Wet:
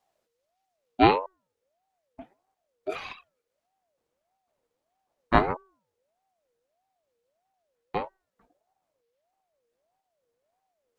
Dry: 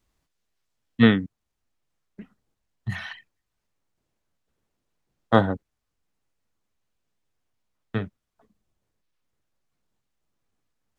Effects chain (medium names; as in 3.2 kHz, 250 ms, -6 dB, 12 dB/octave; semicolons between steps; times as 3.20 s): de-hum 376.6 Hz, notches 3; ring modulator with a swept carrier 620 Hz, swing 25%, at 1.6 Hz